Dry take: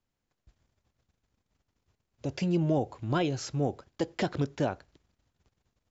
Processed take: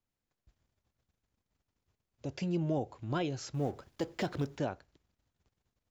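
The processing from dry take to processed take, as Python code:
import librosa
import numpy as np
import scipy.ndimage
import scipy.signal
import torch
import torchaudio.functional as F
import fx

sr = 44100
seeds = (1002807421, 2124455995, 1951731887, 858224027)

y = fx.law_mismatch(x, sr, coded='mu', at=(3.54, 4.58))
y = F.gain(torch.from_numpy(y), -5.5).numpy()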